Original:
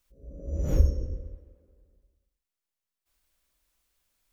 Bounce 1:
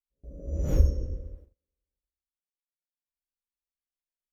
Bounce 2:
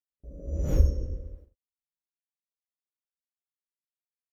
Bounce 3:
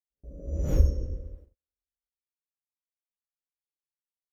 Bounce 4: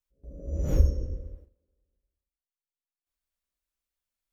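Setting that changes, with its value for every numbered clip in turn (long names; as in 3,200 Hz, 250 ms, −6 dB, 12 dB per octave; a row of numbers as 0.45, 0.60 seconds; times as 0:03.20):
noise gate, range: −28, −56, −41, −15 decibels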